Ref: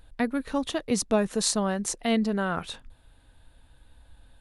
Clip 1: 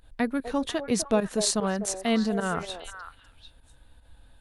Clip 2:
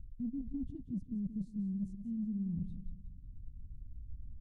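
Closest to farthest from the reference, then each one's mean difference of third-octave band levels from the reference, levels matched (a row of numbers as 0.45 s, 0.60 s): 1, 2; 3.0 dB, 17.5 dB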